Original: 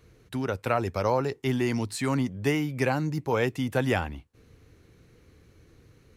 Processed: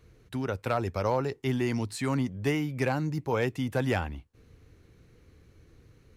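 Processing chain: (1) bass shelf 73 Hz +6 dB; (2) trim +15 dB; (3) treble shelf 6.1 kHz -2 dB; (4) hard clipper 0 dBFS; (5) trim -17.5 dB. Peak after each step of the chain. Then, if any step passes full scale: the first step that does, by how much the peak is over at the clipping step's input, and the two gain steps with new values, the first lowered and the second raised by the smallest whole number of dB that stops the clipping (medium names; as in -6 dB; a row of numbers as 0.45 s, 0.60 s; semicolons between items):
-10.5 dBFS, +4.5 dBFS, +4.5 dBFS, 0.0 dBFS, -17.5 dBFS; step 2, 4.5 dB; step 2 +10 dB, step 5 -12.5 dB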